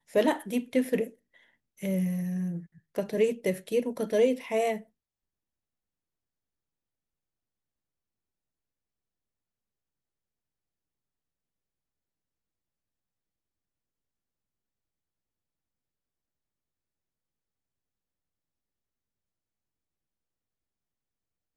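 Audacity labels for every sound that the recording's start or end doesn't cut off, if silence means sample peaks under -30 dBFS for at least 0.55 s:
1.830000	4.760000	sound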